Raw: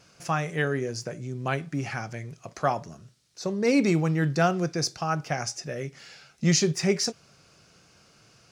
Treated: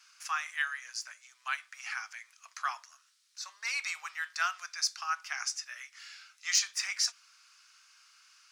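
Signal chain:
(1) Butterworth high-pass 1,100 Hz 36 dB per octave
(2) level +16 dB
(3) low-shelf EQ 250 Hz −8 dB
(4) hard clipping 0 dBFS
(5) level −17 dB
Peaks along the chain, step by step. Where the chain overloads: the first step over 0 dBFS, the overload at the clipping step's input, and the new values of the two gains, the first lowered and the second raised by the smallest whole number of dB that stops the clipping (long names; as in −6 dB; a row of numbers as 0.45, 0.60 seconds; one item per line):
−12.0, +4.0, +4.0, 0.0, −17.0 dBFS
step 2, 4.0 dB
step 2 +12 dB, step 5 −13 dB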